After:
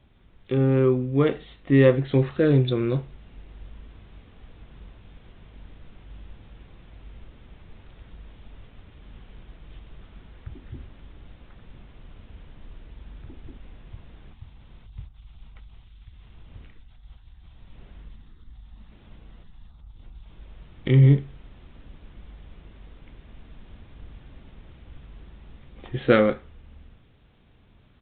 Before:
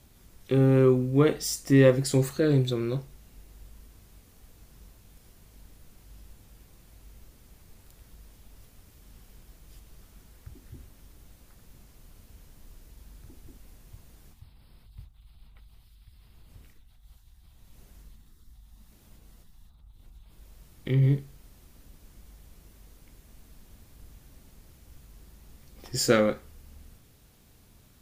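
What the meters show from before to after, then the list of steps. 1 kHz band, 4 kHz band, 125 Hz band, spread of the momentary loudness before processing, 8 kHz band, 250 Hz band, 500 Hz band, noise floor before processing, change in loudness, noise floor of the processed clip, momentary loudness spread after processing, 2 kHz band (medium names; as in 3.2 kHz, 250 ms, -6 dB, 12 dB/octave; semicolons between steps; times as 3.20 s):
+3.0 dB, -3.0 dB, +4.0 dB, 12 LU, under -40 dB, +2.5 dB, +2.0 dB, -58 dBFS, +2.5 dB, -54 dBFS, 13 LU, +3.0 dB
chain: gain riding within 5 dB 2 s; resampled via 8 kHz; trim +2.5 dB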